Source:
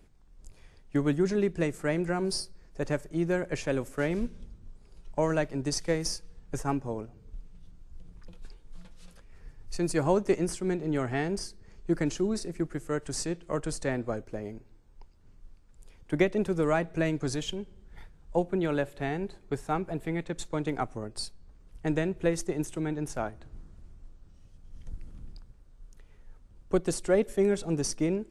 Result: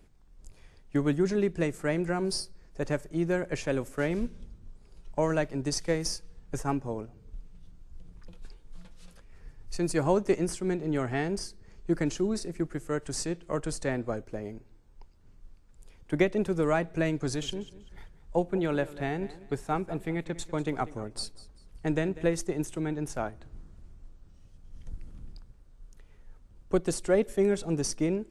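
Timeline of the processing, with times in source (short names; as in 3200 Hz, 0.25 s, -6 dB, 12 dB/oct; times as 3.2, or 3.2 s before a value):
17.21–22.27 feedback echo 0.194 s, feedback 30%, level -17.5 dB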